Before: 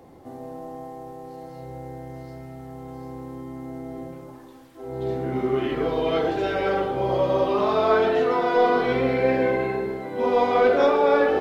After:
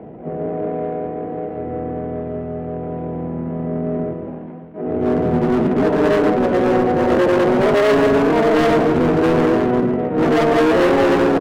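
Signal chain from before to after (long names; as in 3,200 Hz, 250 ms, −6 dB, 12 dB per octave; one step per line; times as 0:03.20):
running median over 25 samples
loudspeaker in its box 120–2,500 Hz, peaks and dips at 150 Hz −8 dB, 210 Hz +7 dB, 670 Hz +8 dB, 1,300 Hz −4 dB
pitch shifter −8 semitones
on a send: repeating echo 146 ms, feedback 32%, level −23.5 dB
on the sum: hard clipping −22.5 dBFS, distortion −7 dB
low-shelf EQ 350 Hz −2.5 dB
pitch-shifted copies added +7 semitones −1 dB
in parallel at −4.5 dB: soft clipping −32 dBFS, distortion −6 dB
on the sum: level +7.5 dB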